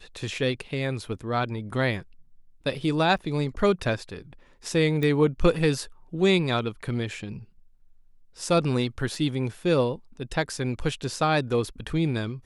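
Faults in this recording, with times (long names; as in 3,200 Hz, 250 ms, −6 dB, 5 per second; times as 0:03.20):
0:03.18–0:03.19: drop-out 8.3 ms
0:05.03: click −16 dBFS
0:09.15: drop-out 2.3 ms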